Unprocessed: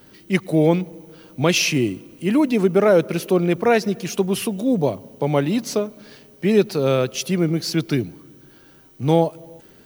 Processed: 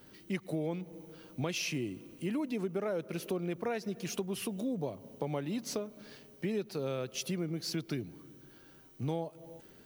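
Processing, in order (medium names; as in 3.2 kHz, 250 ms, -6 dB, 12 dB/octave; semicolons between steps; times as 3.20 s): compression 4:1, threshold -25 dBFS, peak gain reduction 12.5 dB; trim -8 dB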